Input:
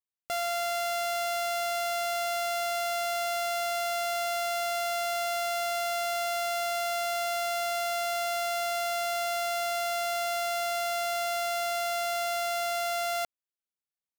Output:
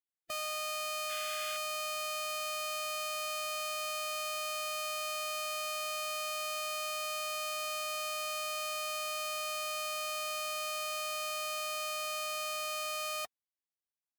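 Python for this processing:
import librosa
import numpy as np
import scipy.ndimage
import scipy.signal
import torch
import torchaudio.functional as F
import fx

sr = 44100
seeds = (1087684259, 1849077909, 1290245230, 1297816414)

y = fx.pitch_keep_formants(x, sr, semitones=-2.0)
y = fx.spec_paint(y, sr, seeds[0], shape='noise', start_s=1.09, length_s=0.48, low_hz=1400.0, high_hz=3800.0, level_db=-41.0)
y = fx.notch_comb(y, sr, f0_hz=460.0)
y = y * 10.0 ** (-5.5 / 20.0)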